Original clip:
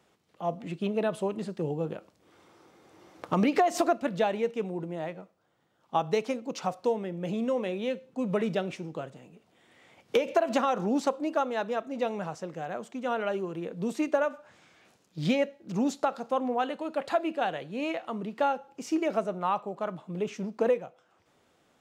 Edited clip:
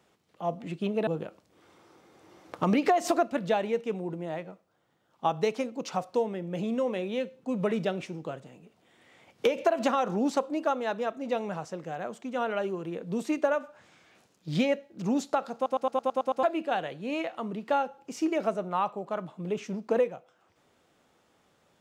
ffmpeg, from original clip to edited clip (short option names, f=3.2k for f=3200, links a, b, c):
-filter_complex "[0:a]asplit=10[a][b][c][d][e][f][g][h][i][j];[a]atrim=end=1.072[k];[b]atrim=start=1.768:end=16.362[l];[c]atrim=start=16.248:end=16.362[m];[d]atrim=start=16.248:end=16.362[n];[e]atrim=start=16.248:end=16.362[o];[f]atrim=start=16.248:end=16.362[p];[g]atrim=start=16.248:end=16.362[q];[h]atrim=start=16.248:end=16.362[r];[i]atrim=start=16.248:end=16.362[s];[j]atrim=start=17.128[t];[k][l]acrossfade=d=0.004:c1=hsin:c2=hsin[u];[u][m]acrossfade=d=0.004:c1=hsin:c2=hsin[v];[v][n]acrossfade=d=0.004:c1=hsin:c2=hsin[w];[w][o]acrossfade=d=0.004:c1=hsin:c2=hsin[x];[x][p]acrossfade=d=0.004:c1=hsin:c2=hsin[y];[y][q]acrossfade=d=0.004:c1=hsin:c2=hsin[z];[z][r]acrossfade=d=0.004:c1=hsin:c2=hsin[aa];[aa][s]acrossfade=d=0.004:c1=hsin:c2=hsin[ab];[ab][t]acrossfade=d=0.004:c1=hsin:c2=hsin"